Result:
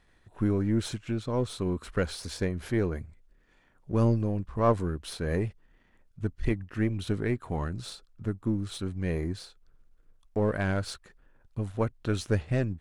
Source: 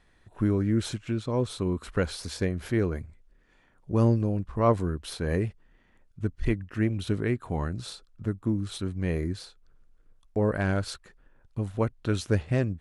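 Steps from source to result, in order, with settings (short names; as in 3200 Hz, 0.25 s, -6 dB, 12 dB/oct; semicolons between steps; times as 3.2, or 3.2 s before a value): half-wave gain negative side -3 dB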